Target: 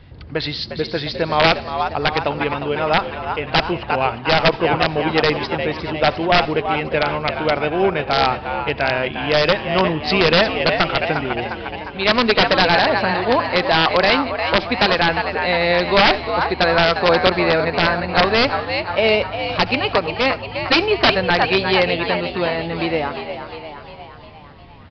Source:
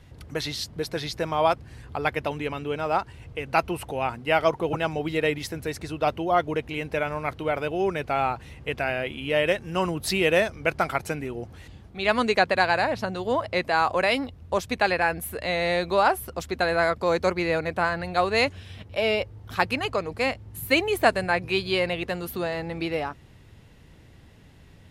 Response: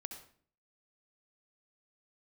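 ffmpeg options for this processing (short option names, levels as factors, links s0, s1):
-filter_complex "[0:a]aeval=exprs='0.562*(cos(1*acos(clip(val(0)/0.562,-1,1)))-cos(1*PI/2))+0.0158*(cos(3*acos(clip(val(0)/0.562,-1,1)))-cos(3*PI/2))+0.0224*(cos(7*acos(clip(val(0)/0.562,-1,1)))-cos(7*PI/2))':c=same,asplit=8[s0][s1][s2][s3][s4][s5][s6][s7];[s1]adelay=354,afreqshift=74,volume=0.355[s8];[s2]adelay=708,afreqshift=148,volume=0.207[s9];[s3]adelay=1062,afreqshift=222,volume=0.119[s10];[s4]adelay=1416,afreqshift=296,volume=0.0692[s11];[s5]adelay=1770,afreqshift=370,volume=0.0403[s12];[s6]adelay=2124,afreqshift=444,volume=0.0232[s13];[s7]adelay=2478,afreqshift=518,volume=0.0135[s14];[s0][s8][s9][s10][s11][s12][s13][s14]amix=inputs=8:normalize=0,aeval=exprs='(mod(5.31*val(0)+1,2)-1)/5.31':c=same,asplit=2[s15][s16];[1:a]atrim=start_sample=2205[s17];[s16][s17]afir=irnorm=-1:irlink=0,volume=0.398[s18];[s15][s18]amix=inputs=2:normalize=0,aresample=11025,aresample=44100,volume=2.66"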